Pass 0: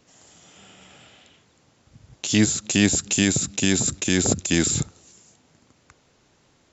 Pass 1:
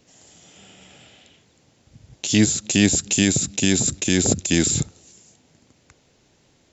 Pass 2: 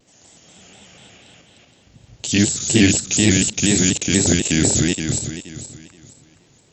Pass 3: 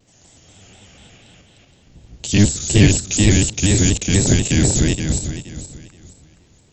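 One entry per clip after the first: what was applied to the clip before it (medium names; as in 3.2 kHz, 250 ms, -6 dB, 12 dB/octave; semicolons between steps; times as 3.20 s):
peaking EQ 1.2 kHz -6.5 dB 0.92 oct; trim +2 dB
backward echo that repeats 236 ms, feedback 51%, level -1 dB; vibrato with a chosen wave square 4.1 Hz, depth 100 cents
octave divider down 1 oct, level +4 dB; trim -1.5 dB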